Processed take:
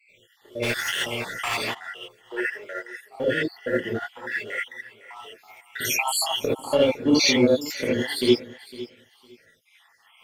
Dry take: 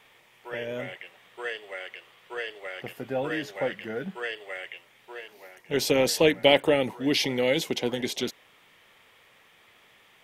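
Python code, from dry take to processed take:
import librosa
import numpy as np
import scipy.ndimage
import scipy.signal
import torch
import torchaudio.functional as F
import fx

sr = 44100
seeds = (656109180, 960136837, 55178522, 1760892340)

y = fx.spec_dropout(x, sr, seeds[0], share_pct=79)
y = fx.lowpass(y, sr, hz=7200.0, slope=24, at=(6.65, 7.56))
y = fx.leveller(y, sr, passes=1)
y = fx.echo_feedback(y, sr, ms=507, feedback_pct=18, wet_db=-17.0)
y = fx.rev_gated(y, sr, seeds[1], gate_ms=100, shape='rising', drr_db=-7.5)
y = fx.spectral_comp(y, sr, ratio=4.0, at=(0.62, 1.73), fade=0.02)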